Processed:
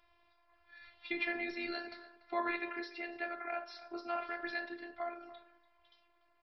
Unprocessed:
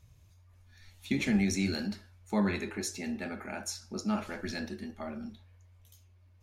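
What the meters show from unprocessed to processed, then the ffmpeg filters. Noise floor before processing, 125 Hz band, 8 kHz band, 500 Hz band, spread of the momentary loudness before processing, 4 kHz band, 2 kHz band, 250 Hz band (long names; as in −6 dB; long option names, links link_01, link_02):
−61 dBFS, below −30 dB, below −35 dB, −3.0 dB, 13 LU, −7.0 dB, +0.5 dB, −13.5 dB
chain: -filter_complex "[0:a]acrossover=split=460 2600:gain=0.0794 1 0.224[link_01][link_02][link_03];[link_01][link_02][link_03]amix=inputs=3:normalize=0,asplit=2[link_04][link_05];[link_05]acompressor=threshold=-51dB:ratio=6,volume=1.5dB[link_06];[link_04][link_06]amix=inputs=2:normalize=0,afftfilt=real='hypot(re,im)*cos(PI*b)':imag='0':win_size=512:overlap=0.75,asplit=2[link_07][link_08];[link_08]adelay=290,highpass=300,lowpass=3400,asoftclip=type=hard:threshold=-33dB,volume=-15dB[link_09];[link_07][link_09]amix=inputs=2:normalize=0,aresample=11025,aresample=44100,volume=4dB"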